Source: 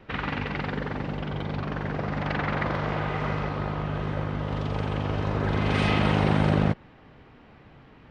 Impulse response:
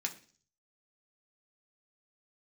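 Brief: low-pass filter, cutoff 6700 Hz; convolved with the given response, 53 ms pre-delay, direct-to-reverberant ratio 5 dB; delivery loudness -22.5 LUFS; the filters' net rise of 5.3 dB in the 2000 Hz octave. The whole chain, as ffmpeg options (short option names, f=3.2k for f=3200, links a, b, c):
-filter_complex "[0:a]lowpass=6.7k,equalizer=f=2k:t=o:g=6.5,asplit=2[a][b];[1:a]atrim=start_sample=2205,adelay=53[c];[b][c]afir=irnorm=-1:irlink=0,volume=-7dB[d];[a][d]amix=inputs=2:normalize=0,volume=3dB"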